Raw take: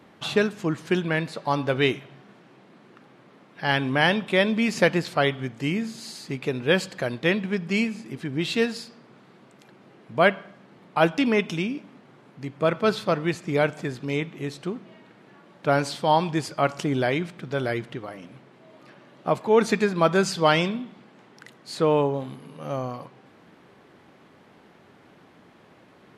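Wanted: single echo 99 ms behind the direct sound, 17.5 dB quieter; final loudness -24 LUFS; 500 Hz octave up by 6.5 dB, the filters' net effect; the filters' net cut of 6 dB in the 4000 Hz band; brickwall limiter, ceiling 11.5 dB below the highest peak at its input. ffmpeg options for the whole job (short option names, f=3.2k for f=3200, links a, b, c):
-af "equalizer=f=500:t=o:g=8,equalizer=f=4k:t=o:g=-8.5,alimiter=limit=-13dB:level=0:latency=1,aecho=1:1:99:0.133,volume=1dB"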